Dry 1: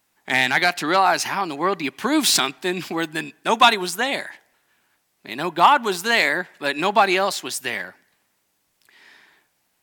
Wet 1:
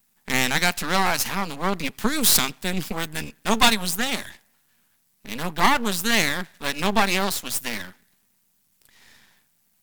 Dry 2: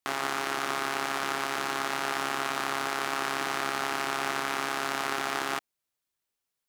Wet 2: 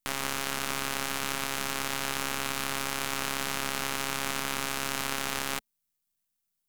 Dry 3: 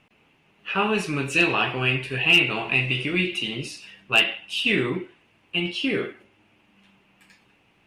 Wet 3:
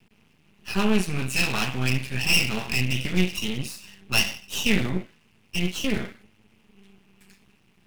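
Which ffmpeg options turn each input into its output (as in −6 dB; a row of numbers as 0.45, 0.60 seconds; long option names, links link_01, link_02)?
-af "lowshelf=frequency=270:width_type=q:width=3:gain=7,aeval=exprs='max(val(0),0)':channel_layout=same,crystalizer=i=1.5:c=0,volume=-1dB"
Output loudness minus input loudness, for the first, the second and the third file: −2.5, −1.0, −3.0 LU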